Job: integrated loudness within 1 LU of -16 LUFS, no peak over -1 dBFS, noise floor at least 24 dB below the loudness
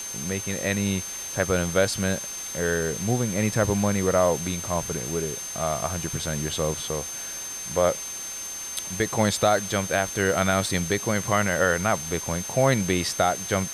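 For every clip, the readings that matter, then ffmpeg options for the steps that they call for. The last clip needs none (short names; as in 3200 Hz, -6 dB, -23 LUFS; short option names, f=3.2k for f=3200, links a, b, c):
steady tone 6300 Hz; tone level -33 dBFS; noise floor -35 dBFS; noise floor target -49 dBFS; loudness -25.0 LUFS; peak -8.5 dBFS; loudness target -16.0 LUFS
-> -af "bandreject=f=6.3k:w=30"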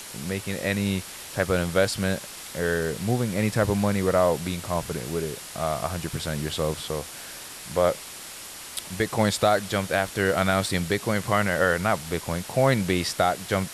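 steady tone none; noise floor -40 dBFS; noise floor target -50 dBFS
-> -af "afftdn=nr=10:nf=-40"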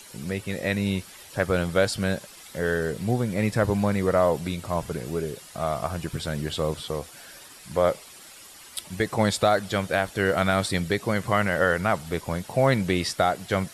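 noise floor -47 dBFS; noise floor target -50 dBFS
-> -af "afftdn=nr=6:nf=-47"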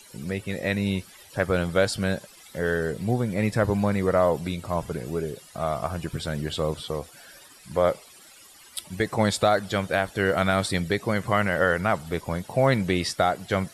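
noise floor -50 dBFS; loudness -25.5 LUFS; peak -9.0 dBFS; loudness target -16.0 LUFS
-> -af "volume=9.5dB,alimiter=limit=-1dB:level=0:latency=1"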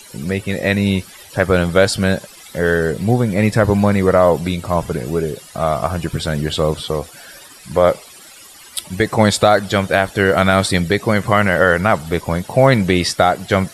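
loudness -16.5 LUFS; peak -1.0 dBFS; noise floor -41 dBFS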